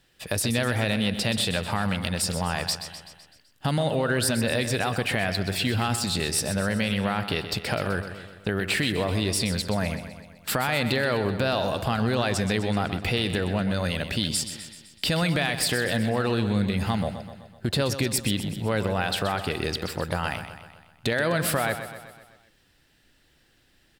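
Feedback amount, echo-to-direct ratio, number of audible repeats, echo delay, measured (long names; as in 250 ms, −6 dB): 56%, −9.0 dB, 5, 127 ms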